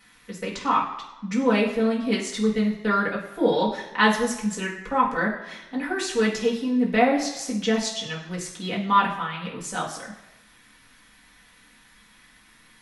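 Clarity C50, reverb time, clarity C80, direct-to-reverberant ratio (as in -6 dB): 6.5 dB, 1.0 s, 9.5 dB, -5.5 dB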